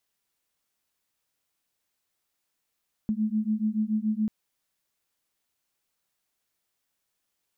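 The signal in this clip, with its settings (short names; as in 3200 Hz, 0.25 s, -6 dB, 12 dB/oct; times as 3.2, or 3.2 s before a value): beating tones 212 Hz, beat 7 Hz, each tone -27 dBFS 1.19 s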